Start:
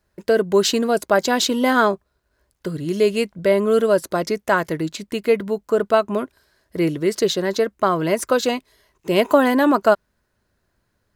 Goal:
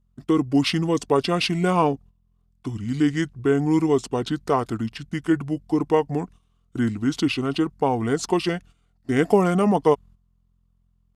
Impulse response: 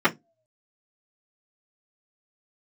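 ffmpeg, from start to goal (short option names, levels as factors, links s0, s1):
-af "aeval=exprs='val(0)+0.00355*(sin(2*PI*60*n/s)+sin(2*PI*2*60*n/s)/2+sin(2*PI*3*60*n/s)/3+sin(2*PI*4*60*n/s)/4+sin(2*PI*5*60*n/s)/5)':c=same,asetrate=31183,aresample=44100,atempo=1.41421,agate=range=0.282:threshold=0.0112:ratio=16:detection=peak,volume=0.708"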